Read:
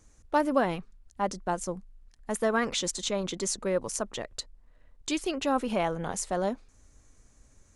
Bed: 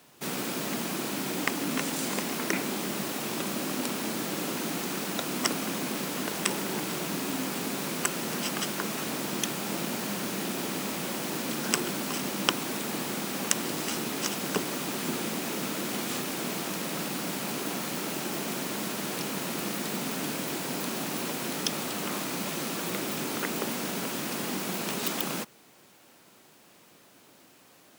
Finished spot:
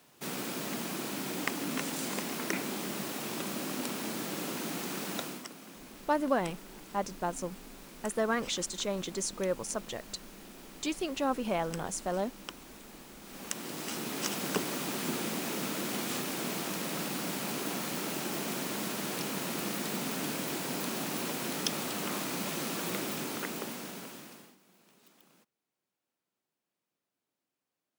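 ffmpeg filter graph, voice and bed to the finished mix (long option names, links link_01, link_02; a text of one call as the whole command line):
ffmpeg -i stem1.wav -i stem2.wav -filter_complex "[0:a]adelay=5750,volume=-3.5dB[link_01];[1:a]volume=11dB,afade=type=out:start_time=5.19:duration=0.26:silence=0.211349,afade=type=in:start_time=13.2:duration=1.17:silence=0.16788,afade=type=out:start_time=22.94:duration=1.62:silence=0.0334965[link_02];[link_01][link_02]amix=inputs=2:normalize=0" out.wav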